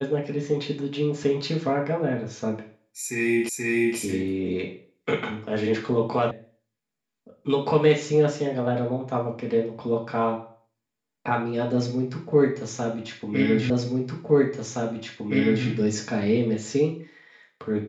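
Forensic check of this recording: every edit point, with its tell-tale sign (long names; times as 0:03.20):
0:03.49: the same again, the last 0.48 s
0:06.31: cut off before it has died away
0:13.70: the same again, the last 1.97 s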